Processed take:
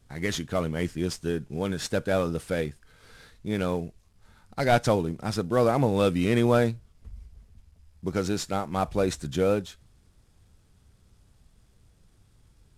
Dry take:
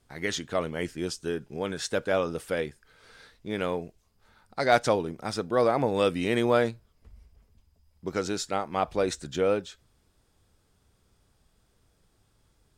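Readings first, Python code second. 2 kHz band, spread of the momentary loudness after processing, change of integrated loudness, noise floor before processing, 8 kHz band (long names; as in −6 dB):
−1.0 dB, 10 LU, +1.5 dB, −69 dBFS, +0.5 dB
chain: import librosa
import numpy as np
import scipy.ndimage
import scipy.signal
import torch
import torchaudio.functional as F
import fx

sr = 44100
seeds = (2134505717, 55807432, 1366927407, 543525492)

y = fx.cvsd(x, sr, bps=64000)
y = fx.bass_treble(y, sr, bass_db=9, treble_db=0)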